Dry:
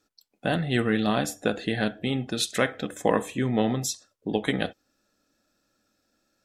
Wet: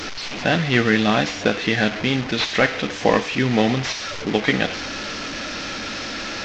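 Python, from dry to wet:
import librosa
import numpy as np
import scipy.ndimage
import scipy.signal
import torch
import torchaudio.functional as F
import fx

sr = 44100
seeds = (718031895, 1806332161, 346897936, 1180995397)

y = fx.delta_mod(x, sr, bps=32000, step_db=-30.0)
y = fx.dynamic_eq(y, sr, hz=2300.0, q=1.1, threshold_db=-46.0, ratio=4.0, max_db=7)
y = y * librosa.db_to_amplitude(5.5)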